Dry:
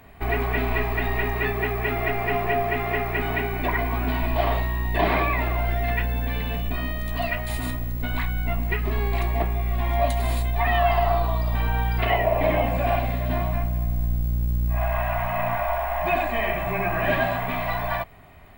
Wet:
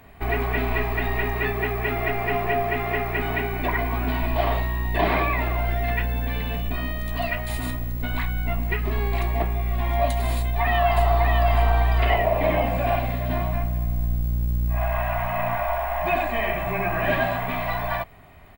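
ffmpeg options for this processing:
-filter_complex "[0:a]asplit=2[s0][s1];[s1]afade=t=in:st=10.36:d=0.01,afade=t=out:st=11.54:d=0.01,aecho=0:1:600|1200|1800|2400|3000:0.707946|0.247781|0.0867234|0.0303532|0.0106236[s2];[s0][s2]amix=inputs=2:normalize=0"

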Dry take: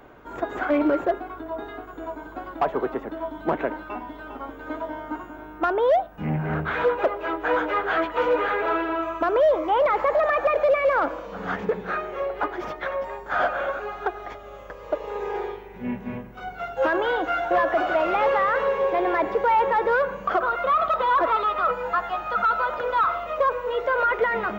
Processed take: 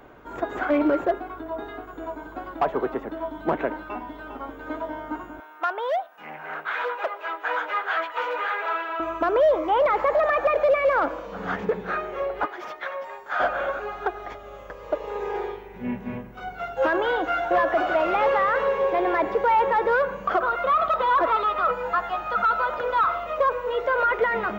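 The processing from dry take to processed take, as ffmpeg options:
-filter_complex "[0:a]asettb=1/sr,asplit=3[s0][s1][s2];[s0]atrim=end=5.404[s3];[s1]atrim=start=5.4:end=9,asetpts=PTS-STARTPTS,afade=t=in:d=0.004:c=qsin,afade=t=out:st=3.596:d=0.004:c=qsin,highpass=840[s4];[s2]atrim=start=8.996[s5];[s3][s4]acrossfade=d=0.004:c1=hsin:c2=qsin[s6];[s6][s5]acrossfade=d=0.004:c1=qsin:c2=hsin,asettb=1/sr,asplit=3[s7][s8][s9];[s7]atrim=end=12.454[s10];[s8]atrim=start=12.45:end=13.4,asetpts=PTS-STARTPTS,afade=t=in:d=0.004:c=qsin,afade=t=out:st=0.946:d=0.004:c=qsin,highpass=f=890:p=1[s11];[s9]atrim=start=13.396[s12];[s10][s11]acrossfade=d=0.004:c1=hsin:c2=qsin[s13];[s13][s12]acrossfade=d=0.004:c1=qsin:c2=hsin"

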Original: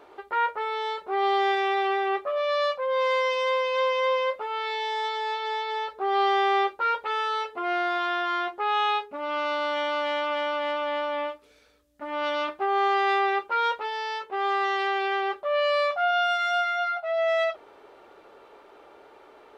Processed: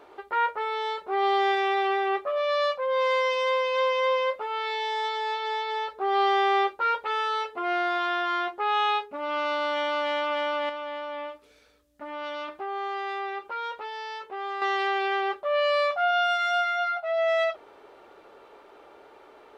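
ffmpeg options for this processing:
-filter_complex "[0:a]asettb=1/sr,asplit=3[s0][s1][s2];[s0]atrim=end=10.694[s3];[s1]atrim=start=10.69:end=14.62,asetpts=PTS-STARTPTS,afade=t=in:d=0.004:c=qsin,afade=t=out:st=3.926:d=0.004:c=qsin,acompressor=threshold=0.0158:ratio=2:attack=3.2:release=140:knee=1:detection=peak[s4];[s2]atrim=start=14.616[s5];[s3][s4]acrossfade=d=0.004:c1=hsin:c2=qsin[s6];[s6][s5]acrossfade=d=0.004:c1=qsin:c2=hsin"

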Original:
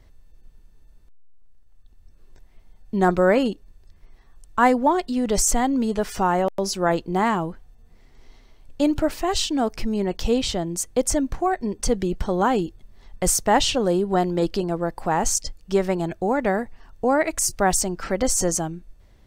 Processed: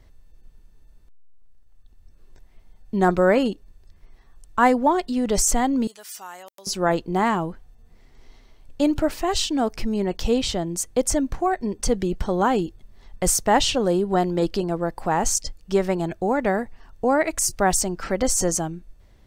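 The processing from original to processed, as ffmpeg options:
-filter_complex "[0:a]asettb=1/sr,asplit=3[s0][s1][s2];[s0]atrim=end=5.874[s3];[s1]atrim=start=5.87:end=6.67,asetpts=PTS-STARTPTS,afade=t=in:d=0.004:c=qsin,afade=t=out:st=0.796:d=0.004:c=qsin,aderivative[s4];[s2]atrim=start=6.666[s5];[s3][s4]acrossfade=d=0.004:c1=hsin:c2=qsin[s6];[s6][s5]acrossfade=d=0.004:c1=qsin:c2=hsin"

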